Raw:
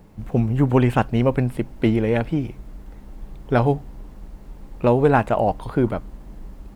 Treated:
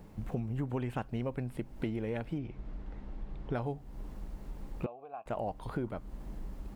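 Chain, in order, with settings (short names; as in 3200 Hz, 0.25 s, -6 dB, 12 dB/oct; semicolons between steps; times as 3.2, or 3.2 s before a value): 2.38–3.53 LPF 3800 Hz 12 dB/oct; compressor 4:1, threshold -31 dBFS, peak gain reduction 16.5 dB; 4.86–5.26 vowel filter a; gain -3.5 dB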